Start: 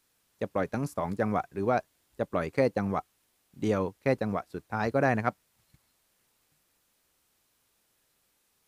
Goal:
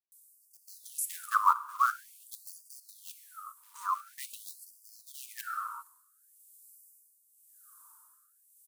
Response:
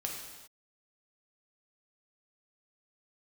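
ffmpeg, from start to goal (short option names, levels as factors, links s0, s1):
-filter_complex "[0:a]firequalizer=gain_entry='entry(250,0);entry(360,5);entry(1200,12);entry(2100,-27);entry(8100,6);entry(11000,8)':delay=0.05:min_phase=1,acrossover=split=170[s0][s1];[s1]adelay=120[s2];[s0][s2]amix=inputs=2:normalize=0,acrusher=bits=8:mode=log:mix=0:aa=0.000001,asplit=2[s3][s4];[1:a]atrim=start_sample=2205[s5];[s4][s5]afir=irnorm=-1:irlink=0,volume=0.447[s6];[s3][s6]amix=inputs=2:normalize=0,tremolo=f=0.9:d=0.73,afftfilt=real='re*gte(b*sr/1024,870*pow(4600/870,0.5+0.5*sin(2*PI*0.47*pts/sr)))':imag='im*gte(b*sr/1024,870*pow(4600/870,0.5+0.5*sin(2*PI*0.47*pts/sr)))':win_size=1024:overlap=0.75,volume=2.37"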